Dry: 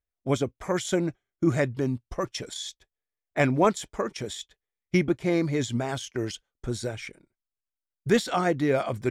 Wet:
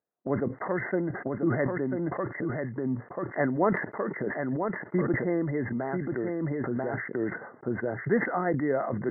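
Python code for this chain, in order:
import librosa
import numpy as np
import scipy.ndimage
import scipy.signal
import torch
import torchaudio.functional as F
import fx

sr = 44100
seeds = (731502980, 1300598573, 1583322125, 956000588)

p1 = scipy.signal.sosfilt(scipy.signal.butter(4, 150.0, 'highpass', fs=sr, output='sos'), x)
p2 = p1 + fx.echo_single(p1, sr, ms=990, db=-6.5, dry=0)
p3 = fx.env_lowpass(p2, sr, base_hz=910.0, full_db=-19.0)
p4 = fx.low_shelf(p3, sr, hz=440.0, db=-5.0)
p5 = fx.over_compress(p4, sr, threshold_db=-39.0, ratio=-0.5)
p6 = p4 + (p5 * 10.0 ** (1.5 / 20.0))
p7 = fx.dynamic_eq(p6, sr, hz=1300.0, q=0.74, threshold_db=-39.0, ratio=4.0, max_db=-4)
p8 = fx.brickwall_lowpass(p7, sr, high_hz=2100.0)
y = fx.sustainer(p8, sr, db_per_s=71.0)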